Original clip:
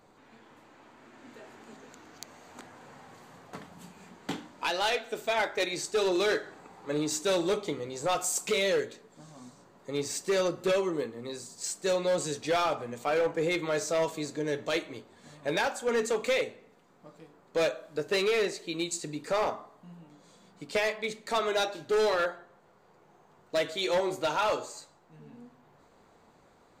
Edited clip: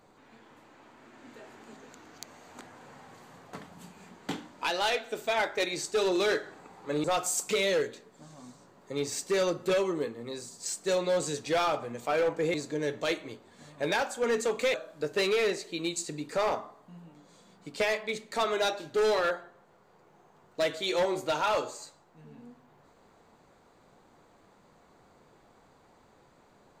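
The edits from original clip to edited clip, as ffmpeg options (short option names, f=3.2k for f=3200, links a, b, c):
-filter_complex "[0:a]asplit=4[a][b][c][d];[a]atrim=end=7.042[e];[b]atrim=start=8.018:end=13.522[f];[c]atrim=start=14.188:end=16.392[g];[d]atrim=start=17.688[h];[e][f]acrossfade=d=0.004:c1=hsin:c2=hsin[i];[i][g]acrossfade=d=0.004:c1=hsin:c2=hsin[j];[j][h]acrossfade=d=0.004:c1=hsin:c2=hsin"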